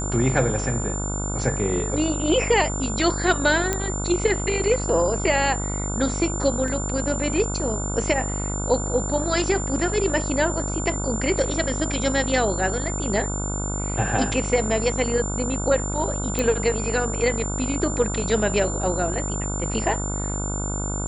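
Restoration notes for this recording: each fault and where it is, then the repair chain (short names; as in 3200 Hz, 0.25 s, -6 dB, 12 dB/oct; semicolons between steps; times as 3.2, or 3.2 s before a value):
buzz 50 Hz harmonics 30 -28 dBFS
tone 7200 Hz -30 dBFS
3.73 pop -8 dBFS
6.68 gap 2.2 ms
16.39 pop -9 dBFS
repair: de-click; notch 7200 Hz, Q 30; de-hum 50 Hz, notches 30; interpolate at 6.68, 2.2 ms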